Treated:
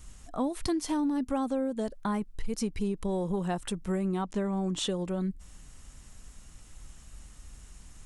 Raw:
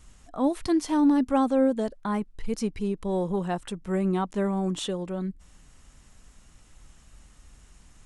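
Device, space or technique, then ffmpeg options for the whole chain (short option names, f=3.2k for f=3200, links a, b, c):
ASMR close-microphone chain: -filter_complex "[0:a]asettb=1/sr,asplit=3[a][b][c];[a]atrim=end=4.254[d];[b]atrim=start=4.25:end=4.87,asetpts=PTS-STARTPTS,afade=t=in:d=0.004:c=qsin,afade=t=out:st=0.616:d=0.004:c=qsin,lowpass=7.7k[e];[c]atrim=start=4.866[f];[d][e]acrossfade=d=0.004:c1=hsin:c2=qsin[g];[g][f]acrossfade=d=0.004:c1=qsin:c2=hsin,lowshelf=f=150:g=4.5,acompressor=threshold=-26dB:ratio=10,highshelf=f=6.3k:g=7.5"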